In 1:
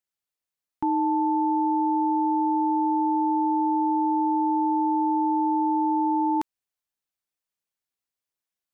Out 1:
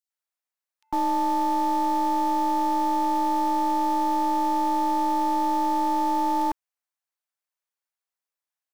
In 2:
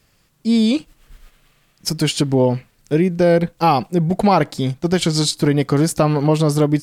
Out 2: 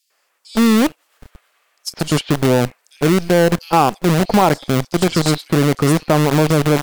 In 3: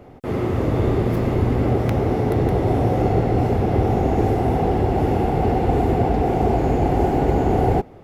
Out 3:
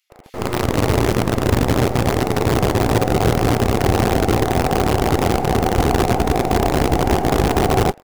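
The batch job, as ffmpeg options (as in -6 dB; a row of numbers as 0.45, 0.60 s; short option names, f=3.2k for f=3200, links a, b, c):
-filter_complex "[0:a]highshelf=f=3k:g=-5,acontrast=25,acrossover=split=3300[a][b];[a]adelay=100[c];[c][b]amix=inputs=2:normalize=0,aeval=exprs='0.891*(cos(1*acos(clip(val(0)/0.891,-1,1)))-cos(1*PI/2))+0.0282*(cos(3*acos(clip(val(0)/0.891,-1,1)))-cos(3*PI/2))+0.0282*(cos(5*acos(clip(val(0)/0.891,-1,1)))-cos(5*PI/2))+0.00891*(cos(7*acos(clip(val(0)/0.891,-1,1)))-cos(7*PI/2))+0.0178*(cos(8*acos(clip(val(0)/0.891,-1,1)))-cos(8*PI/2))':c=same,acrossover=split=500|610[d][e][f];[d]acrusher=bits=3:dc=4:mix=0:aa=0.000001[g];[g][e][f]amix=inputs=3:normalize=0,volume=-3dB"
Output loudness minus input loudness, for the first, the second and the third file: -0.5, +1.5, +2.0 LU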